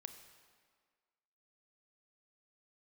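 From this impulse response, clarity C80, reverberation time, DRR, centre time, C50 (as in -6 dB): 10.0 dB, 1.7 s, 7.5 dB, 22 ms, 9.0 dB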